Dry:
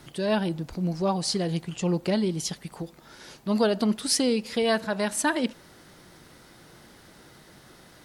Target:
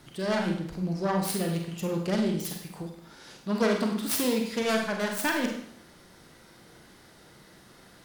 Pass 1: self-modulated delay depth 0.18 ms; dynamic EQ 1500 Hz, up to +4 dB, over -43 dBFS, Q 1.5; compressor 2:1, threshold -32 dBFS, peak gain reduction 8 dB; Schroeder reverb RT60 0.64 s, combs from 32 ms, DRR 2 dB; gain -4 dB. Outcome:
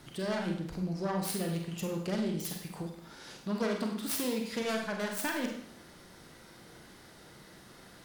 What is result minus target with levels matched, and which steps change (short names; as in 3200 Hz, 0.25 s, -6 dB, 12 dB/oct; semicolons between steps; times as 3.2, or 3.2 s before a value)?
compressor: peak gain reduction +8 dB
remove: compressor 2:1, threshold -32 dBFS, peak gain reduction 8 dB